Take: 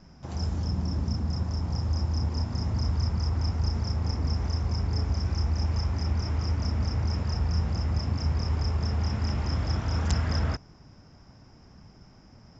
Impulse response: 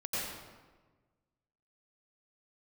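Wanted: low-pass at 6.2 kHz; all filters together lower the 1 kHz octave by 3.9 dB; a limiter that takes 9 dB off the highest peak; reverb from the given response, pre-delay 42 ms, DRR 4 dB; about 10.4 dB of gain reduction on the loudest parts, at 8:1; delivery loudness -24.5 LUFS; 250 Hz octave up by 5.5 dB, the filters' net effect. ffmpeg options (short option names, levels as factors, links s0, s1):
-filter_complex "[0:a]lowpass=6200,equalizer=f=250:t=o:g=7.5,equalizer=f=1000:t=o:g=-5.5,acompressor=threshold=0.0251:ratio=8,alimiter=level_in=2.82:limit=0.0631:level=0:latency=1,volume=0.355,asplit=2[s0][s1];[1:a]atrim=start_sample=2205,adelay=42[s2];[s1][s2]afir=irnorm=-1:irlink=0,volume=0.355[s3];[s0][s3]amix=inputs=2:normalize=0,volume=5.96"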